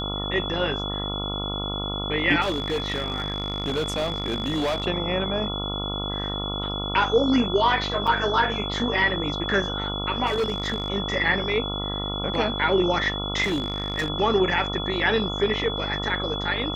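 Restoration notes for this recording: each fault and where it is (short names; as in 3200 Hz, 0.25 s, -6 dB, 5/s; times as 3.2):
buzz 50 Hz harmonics 28 -31 dBFS
tone 3400 Hz -30 dBFS
2.41–4.86 clipped -21 dBFS
8.07–8.08 gap 5.6 ms
10.26–10.9 clipped -20 dBFS
13.43–14.1 clipped -21 dBFS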